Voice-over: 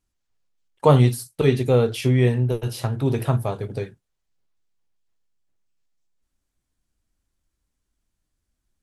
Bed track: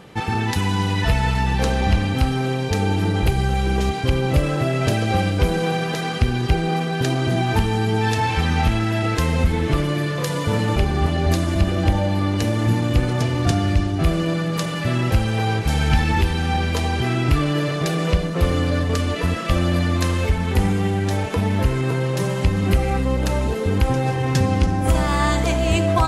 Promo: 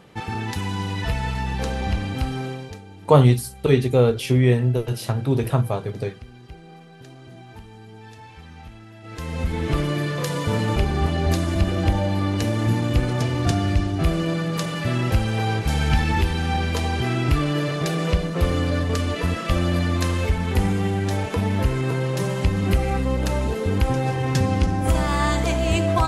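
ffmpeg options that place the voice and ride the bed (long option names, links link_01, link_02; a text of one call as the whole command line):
ffmpeg -i stem1.wav -i stem2.wav -filter_complex "[0:a]adelay=2250,volume=1dB[link_01];[1:a]volume=15dB,afade=type=out:start_time=2.4:duration=0.42:silence=0.141254,afade=type=in:start_time=9.02:duration=0.78:silence=0.0891251[link_02];[link_01][link_02]amix=inputs=2:normalize=0" out.wav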